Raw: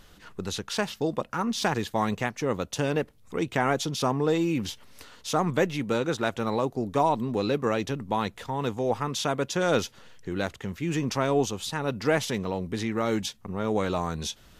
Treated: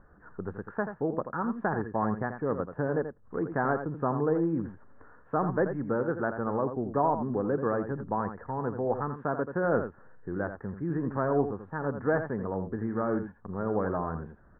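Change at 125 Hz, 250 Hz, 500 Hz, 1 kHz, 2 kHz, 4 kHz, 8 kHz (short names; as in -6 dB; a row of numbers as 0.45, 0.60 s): -2.5 dB, -2.5 dB, -2.0 dB, -2.5 dB, -4.5 dB, under -40 dB, under -40 dB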